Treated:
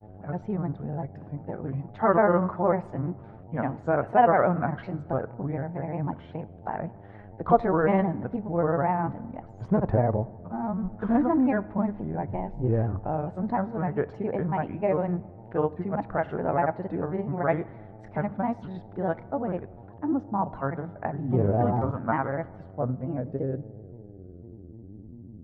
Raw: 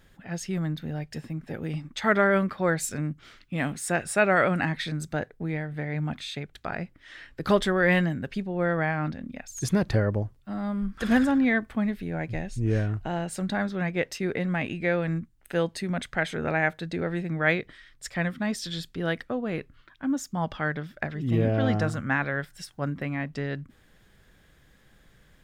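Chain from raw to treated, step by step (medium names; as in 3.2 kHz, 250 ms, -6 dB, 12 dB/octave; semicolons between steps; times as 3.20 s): mains buzz 100 Hz, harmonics 8, -46 dBFS -6 dB/octave; granulator, spray 33 ms, pitch spread up and down by 3 st; low-pass sweep 900 Hz -> 260 Hz, 22.26–25.26 s; on a send: reverberation RT60 1.6 s, pre-delay 4 ms, DRR 18 dB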